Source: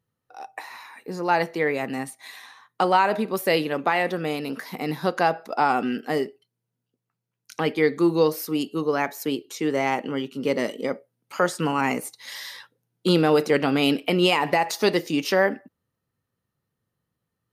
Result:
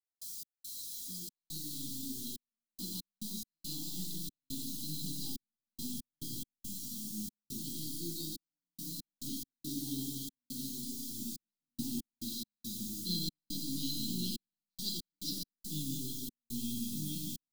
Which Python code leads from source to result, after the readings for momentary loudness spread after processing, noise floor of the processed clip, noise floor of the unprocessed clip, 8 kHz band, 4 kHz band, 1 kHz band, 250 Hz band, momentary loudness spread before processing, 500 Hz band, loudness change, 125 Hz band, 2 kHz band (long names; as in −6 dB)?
7 LU, below −85 dBFS, −82 dBFS, −0.5 dB, −9.0 dB, below −40 dB, −15.0 dB, 16 LU, −35.0 dB, −16.0 dB, −12.0 dB, below −40 dB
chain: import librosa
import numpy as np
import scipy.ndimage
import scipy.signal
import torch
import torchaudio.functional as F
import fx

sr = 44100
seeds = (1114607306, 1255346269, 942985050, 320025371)

p1 = fx.cvsd(x, sr, bps=64000)
p2 = fx.lowpass_res(p1, sr, hz=4000.0, q=3.7)
p3 = fx.peak_eq(p2, sr, hz=2600.0, db=-8.0, octaves=1.2)
p4 = p3 + fx.echo_feedback(p3, sr, ms=149, feedback_pct=43, wet_db=-4.0, dry=0)
p5 = fx.echo_pitch(p4, sr, ms=179, semitones=-3, count=2, db_per_echo=-3.0)
p6 = fx.quant_dither(p5, sr, seeds[0], bits=6, dither='triangular')
p7 = fx.low_shelf(p6, sr, hz=170.0, db=-11.5)
p8 = fx.comb_fb(p7, sr, f0_hz=820.0, decay_s=0.19, harmonics='all', damping=0.0, mix_pct=80)
p9 = fx.rev_schroeder(p8, sr, rt60_s=0.86, comb_ms=26, drr_db=5.5)
p10 = fx.step_gate(p9, sr, bpm=70, pattern='.x.xxx.xxxx..x', floor_db=-60.0, edge_ms=4.5)
p11 = scipy.signal.sosfilt(scipy.signal.cheby2(4, 40, [440.0, 2400.0], 'bandstop', fs=sr, output='sos'), p10)
y = p11 * 10.0 ** (3.5 / 20.0)